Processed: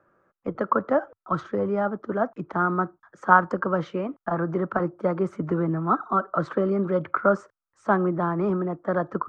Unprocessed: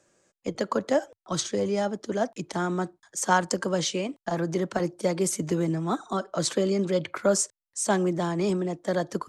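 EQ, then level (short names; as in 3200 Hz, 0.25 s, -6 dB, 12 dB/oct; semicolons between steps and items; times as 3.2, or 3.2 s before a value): synth low-pass 1300 Hz, resonance Q 5; low shelf 430 Hz +4 dB; -2.0 dB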